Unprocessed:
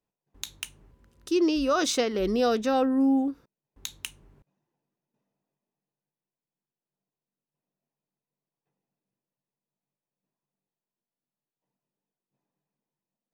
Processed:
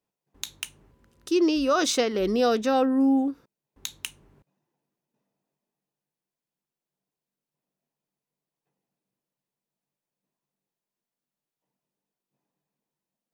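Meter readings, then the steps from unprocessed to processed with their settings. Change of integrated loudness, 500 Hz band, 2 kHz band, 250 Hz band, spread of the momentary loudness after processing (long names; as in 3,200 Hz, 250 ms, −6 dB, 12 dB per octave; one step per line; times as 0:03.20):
+1.5 dB, +2.0 dB, +2.0 dB, +1.5 dB, 17 LU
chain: low-shelf EQ 67 Hz −10 dB
level +2 dB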